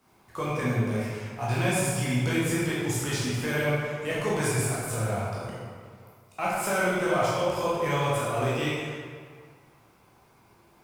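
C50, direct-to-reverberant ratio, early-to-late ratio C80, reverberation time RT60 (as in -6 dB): -2.0 dB, -8.0 dB, 0.0 dB, 1.9 s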